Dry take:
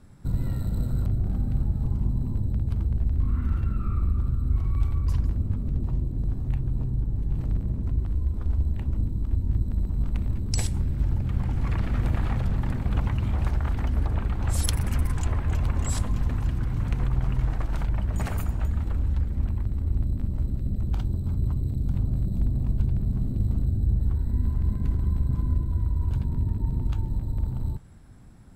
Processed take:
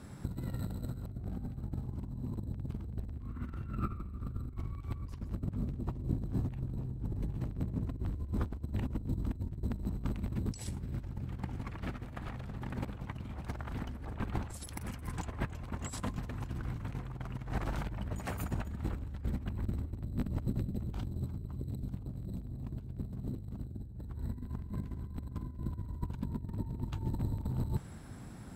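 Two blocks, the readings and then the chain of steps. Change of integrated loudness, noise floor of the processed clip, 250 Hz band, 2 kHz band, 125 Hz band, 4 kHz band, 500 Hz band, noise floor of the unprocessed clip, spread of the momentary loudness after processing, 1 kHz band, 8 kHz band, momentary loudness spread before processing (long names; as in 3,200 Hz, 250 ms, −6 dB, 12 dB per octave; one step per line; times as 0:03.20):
−12.0 dB, −46 dBFS, −6.0 dB, −6.5 dB, −12.0 dB, −10.5 dB, −5.0 dB, −31 dBFS, 6 LU, −5.5 dB, −12.0 dB, 3 LU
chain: high-pass filter 130 Hz 6 dB per octave
compressor whose output falls as the input rises −36 dBFS, ratio −0.5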